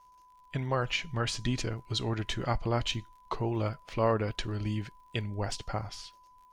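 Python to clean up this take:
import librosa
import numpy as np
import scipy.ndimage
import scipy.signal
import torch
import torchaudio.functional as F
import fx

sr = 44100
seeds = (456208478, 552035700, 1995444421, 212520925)

y = fx.fix_declick_ar(x, sr, threshold=6.5)
y = fx.notch(y, sr, hz=1000.0, q=30.0)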